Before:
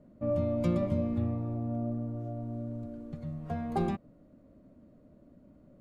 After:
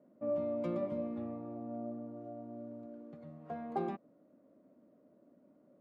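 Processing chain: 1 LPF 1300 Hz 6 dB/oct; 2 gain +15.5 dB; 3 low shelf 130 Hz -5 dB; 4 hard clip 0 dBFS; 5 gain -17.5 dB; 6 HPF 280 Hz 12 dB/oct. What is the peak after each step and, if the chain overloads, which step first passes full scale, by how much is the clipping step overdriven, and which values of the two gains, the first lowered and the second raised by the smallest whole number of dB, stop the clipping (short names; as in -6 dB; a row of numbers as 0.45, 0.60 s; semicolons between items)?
-17.0, -1.5, -3.0, -3.0, -20.5, -24.0 dBFS; no overload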